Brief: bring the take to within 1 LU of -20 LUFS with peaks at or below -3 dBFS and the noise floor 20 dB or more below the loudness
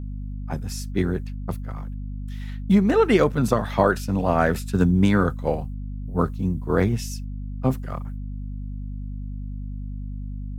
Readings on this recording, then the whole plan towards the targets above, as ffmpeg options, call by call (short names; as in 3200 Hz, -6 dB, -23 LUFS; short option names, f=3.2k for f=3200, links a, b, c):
hum 50 Hz; harmonics up to 250 Hz; hum level -28 dBFS; loudness -23.0 LUFS; peak -4.0 dBFS; loudness target -20.0 LUFS
-> -af "bandreject=f=50:t=h:w=6,bandreject=f=100:t=h:w=6,bandreject=f=150:t=h:w=6,bandreject=f=200:t=h:w=6,bandreject=f=250:t=h:w=6"
-af "volume=3dB,alimiter=limit=-3dB:level=0:latency=1"